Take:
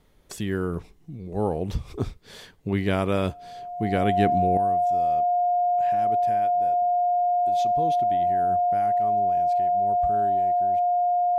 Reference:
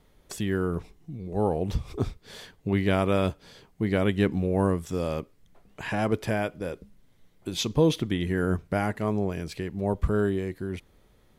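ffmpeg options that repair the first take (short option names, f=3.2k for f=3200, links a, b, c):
-af "bandreject=f=710:w=30,asetnsamples=n=441:p=0,asendcmd='4.57 volume volume 11.5dB',volume=0dB"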